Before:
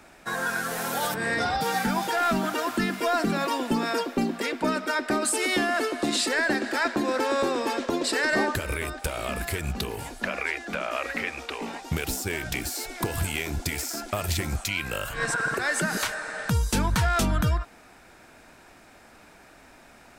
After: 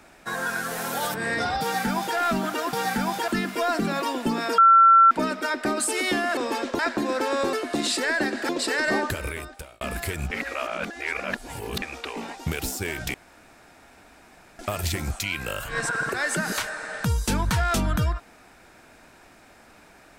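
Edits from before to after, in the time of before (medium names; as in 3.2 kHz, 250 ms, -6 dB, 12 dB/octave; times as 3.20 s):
1.62–2.17 s: copy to 2.73 s
4.03–4.56 s: bleep 1.35 kHz -10.5 dBFS
5.82–6.78 s: swap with 7.52–7.94 s
8.62–9.26 s: fade out
9.76–11.27 s: reverse
12.59–14.04 s: room tone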